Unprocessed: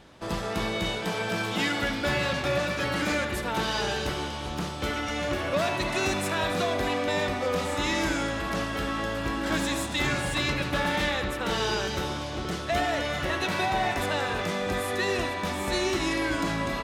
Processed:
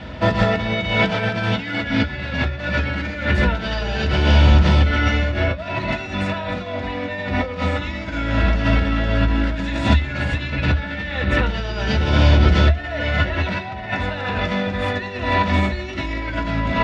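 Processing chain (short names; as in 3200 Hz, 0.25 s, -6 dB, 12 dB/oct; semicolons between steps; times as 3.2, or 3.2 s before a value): negative-ratio compressor -33 dBFS, ratio -0.5; LPF 3900 Hz 12 dB/oct; reverb RT60 0.10 s, pre-delay 3 ms, DRR 3 dB; gain +3.5 dB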